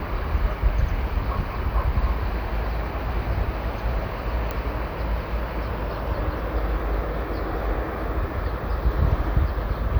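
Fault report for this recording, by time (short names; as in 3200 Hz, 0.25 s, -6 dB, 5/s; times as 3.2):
4.51 pop -14 dBFS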